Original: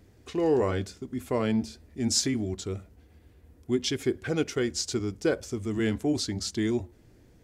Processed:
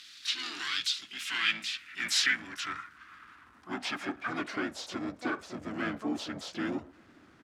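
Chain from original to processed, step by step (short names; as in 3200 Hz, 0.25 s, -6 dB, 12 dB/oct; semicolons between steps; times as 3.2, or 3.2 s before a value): harmoniser -5 st -3 dB, -4 st -5 dB, +7 st -6 dB; EQ curve 160 Hz 0 dB, 300 Hz +4 dB, 540 Hz -22 dB, 1300 Hz +14 dB; power-law curve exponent 0.7; band-pass sweep 3900 Hz -> 600 Hz, 0.77–4.48; gain -6 dB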